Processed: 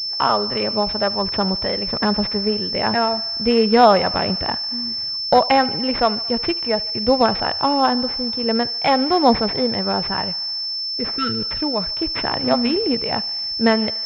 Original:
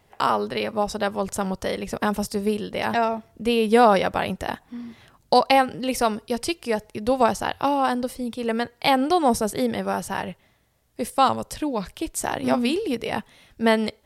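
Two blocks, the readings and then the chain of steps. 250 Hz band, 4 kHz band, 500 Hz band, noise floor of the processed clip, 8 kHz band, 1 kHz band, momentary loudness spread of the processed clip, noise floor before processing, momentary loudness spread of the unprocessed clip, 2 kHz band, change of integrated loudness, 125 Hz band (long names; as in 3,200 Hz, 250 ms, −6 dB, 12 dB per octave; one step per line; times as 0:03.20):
+3.5 dB, +13.0 dB, +3.0 dB, −26 dBFS, below −15 dB, +2.5 dB, 6 LU, −62 dBFS, 10 LU, +2.0 dB, +4.5 dB, +4.5 dB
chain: healed spectral selection 0:11.01–0:11.43, 510–1,300 Hz
phase shifter 1.4 Hz, delay 1.7 ms, feedback 26%
on a send: feedback echo with a high-pass in the loop 74 ms, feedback 80%, high-pass 450 Hz, level −20 dB
on the sum: switching amplifier with a slow clock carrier 5,300 Hz
level +3 dB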